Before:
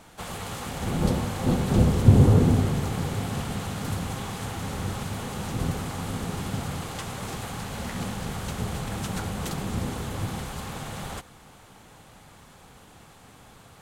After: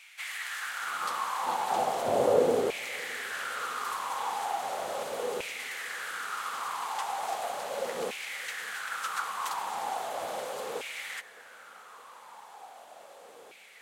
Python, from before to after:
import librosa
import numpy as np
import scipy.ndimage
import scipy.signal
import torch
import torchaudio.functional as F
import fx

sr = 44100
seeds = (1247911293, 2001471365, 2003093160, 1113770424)

y = fx.filter_lfo_highpass(x, sr, shape='saw_down', hz=0.37, low_hz=440.0, high_hz=2400.0, q=5.4)
y = fx.echo_filtered(y, sr, ms=615, feedback_pct=84, hz=1500.0, wet_db=-23.0)
y = F.gain(torch.from_numpy(y), -3.0).numpy()